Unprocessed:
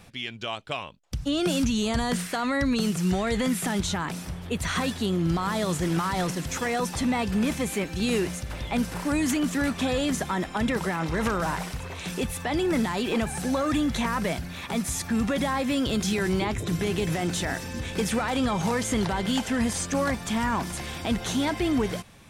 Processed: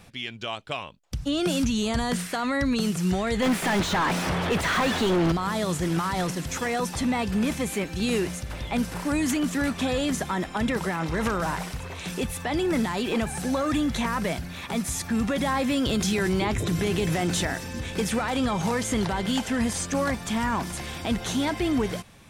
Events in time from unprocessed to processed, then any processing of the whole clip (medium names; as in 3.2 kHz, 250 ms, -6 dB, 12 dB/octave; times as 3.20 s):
3.42–5.32 s: overdrive pedal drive 33 dB, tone 1.6 kHz, clips at -15 dBFS
15.46–17.47 s: level flattener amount 50%